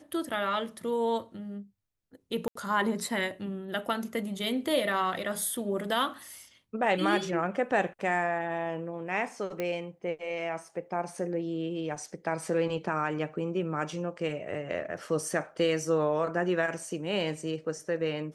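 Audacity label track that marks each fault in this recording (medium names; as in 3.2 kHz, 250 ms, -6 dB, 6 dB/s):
2.480000	2.550000	dropout 74 ms
9.600000	9.600000	pop -19 dBFS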